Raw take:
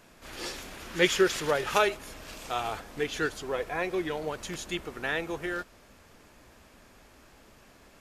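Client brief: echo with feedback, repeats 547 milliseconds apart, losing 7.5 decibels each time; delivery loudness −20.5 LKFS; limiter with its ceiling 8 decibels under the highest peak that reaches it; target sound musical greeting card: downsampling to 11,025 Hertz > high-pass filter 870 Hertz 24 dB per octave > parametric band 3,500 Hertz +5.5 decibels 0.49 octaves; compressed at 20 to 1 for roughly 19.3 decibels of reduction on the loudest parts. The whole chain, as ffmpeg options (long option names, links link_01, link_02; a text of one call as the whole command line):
ffmpeg -i in.wav -af "acompressor=threshold=-37dB:ratio=20,alimiter=level_in=8.5dB:limit=-24dB:level=0:latency=1,volume=-8.5dB,aecho=1:1:547|1094|1641|2188|2735:0.422|0.177|0.0744|0.0312|0.0131,aresample=11025,aresample=44100,highpass=frequency=870:width=0.5412,highpass=frequency=870:width=1.3066,equalizer=frequency=3500:width_type=o:width=0.49:gain=5.5,volume=24.5dB" out.wav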